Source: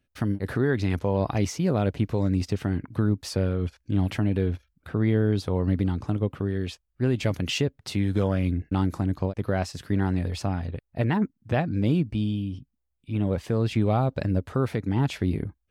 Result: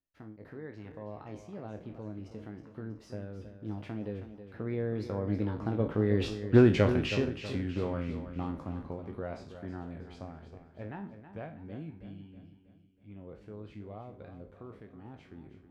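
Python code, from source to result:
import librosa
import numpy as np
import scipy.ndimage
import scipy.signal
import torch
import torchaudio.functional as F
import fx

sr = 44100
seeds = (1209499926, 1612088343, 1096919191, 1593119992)

p1 = fx.spec_trails(x, sr, decay_s=0.37)
p2 = fx.doppler_pass(p1, sr, speed_mps=24, closest_m=3.7, pass_at_s=6.44)
p3 = fx.lowpass(p2, sr, hz=1300.0, slope=6)
p4 = fx.peak_eq(p3, sr, hz=100.0, db=-6.5, octaves=2.3)
p5 = fx.rider(p4, sr, range_db=4, speed_s=2.0)
p6 = p4 + (p5 * 10.0 ** (3.0 / 20.0))
p7 = fx.doubler(p6, sr, ms=19.0, db=-12)
p8 = p7 + fx.echo_feedback(p7, sr, ms=321, feedback_pct=46, wet_db=-11.0, dry=0)
y = p8 * 10.0 ** (3.5 / 20.0)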